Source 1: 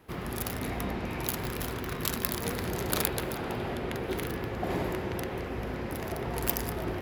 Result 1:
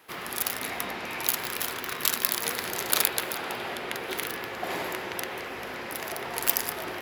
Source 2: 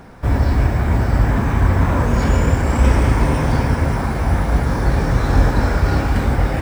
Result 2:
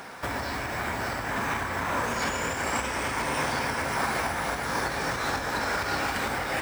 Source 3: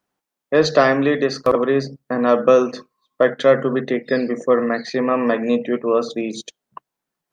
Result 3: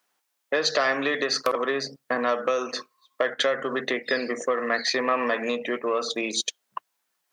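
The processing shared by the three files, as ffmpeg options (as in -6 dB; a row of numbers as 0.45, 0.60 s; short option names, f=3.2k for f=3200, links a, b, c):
-af "acompressor=threshold=-19dB:ratio=10,asoftclip=type=tanh:threshold=-11dB,highpass=f=1.5k:p=1,volume=8.5dB"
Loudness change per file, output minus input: +4.0, -11.0, -7.5 LU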